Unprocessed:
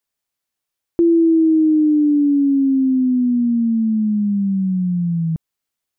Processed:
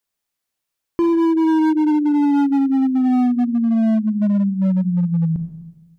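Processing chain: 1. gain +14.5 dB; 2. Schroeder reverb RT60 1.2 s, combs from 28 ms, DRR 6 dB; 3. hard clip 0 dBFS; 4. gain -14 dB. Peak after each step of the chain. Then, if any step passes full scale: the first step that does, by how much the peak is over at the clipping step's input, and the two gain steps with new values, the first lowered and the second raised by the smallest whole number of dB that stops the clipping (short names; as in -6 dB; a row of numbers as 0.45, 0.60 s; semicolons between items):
+5.0, +9.5, 0.0, -14.0 dBFS; step 1, 9.5 dB; step 1 +4.5 dB, step 4 -4 dB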